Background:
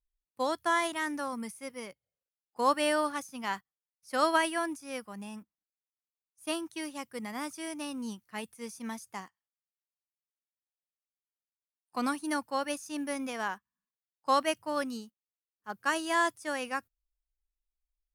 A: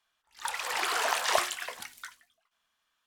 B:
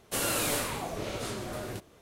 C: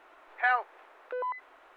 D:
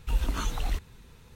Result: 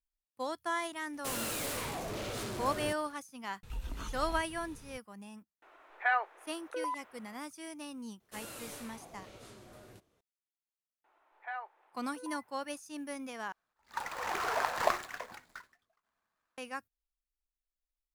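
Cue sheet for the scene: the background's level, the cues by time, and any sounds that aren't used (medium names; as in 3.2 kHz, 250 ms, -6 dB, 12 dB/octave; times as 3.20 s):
background -6.5 dB
1.13 s: add B -16.5 dB + waveshaping leveller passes 5
3.63 s: add D -0.5 dB + compression 2:1, threshold -45 dBFS
5.62 s: add C -3 dB
8.20 s: add B -17 dB
11.04 s: add C -16.5 dB + peaking EQ 870 Hz +8 dB 0.36 oct
13.52 s: replace with A -1 dB + median filter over 15 samples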